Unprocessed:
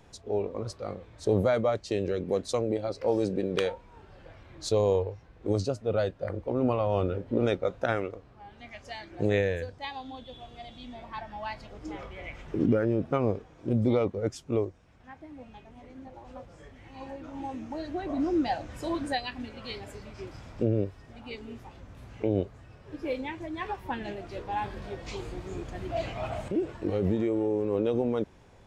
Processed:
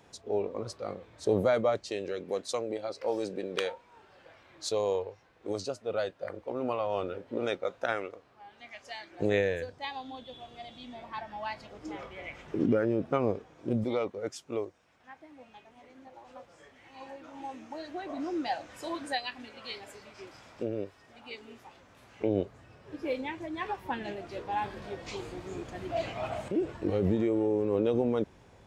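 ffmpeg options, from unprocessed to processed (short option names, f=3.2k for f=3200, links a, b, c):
-af "asetnsamples=n=441:p=0,asendcmd='1.9 highpass f 660;9.21 highpass f 200;13.84 highpass f 650;22.21 highpass f 170;26.61 highpass f 52',highpass=f=210:p=1"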